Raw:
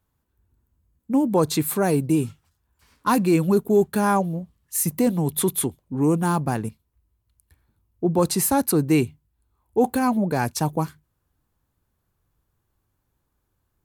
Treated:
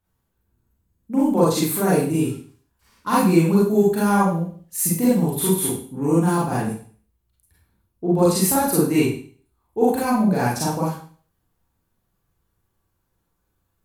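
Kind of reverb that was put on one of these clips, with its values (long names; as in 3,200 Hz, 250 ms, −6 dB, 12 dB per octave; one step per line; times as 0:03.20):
four-comb reverb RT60 0.45 s, combs from 33 ms, DRR −7 dB
level −5.5 dB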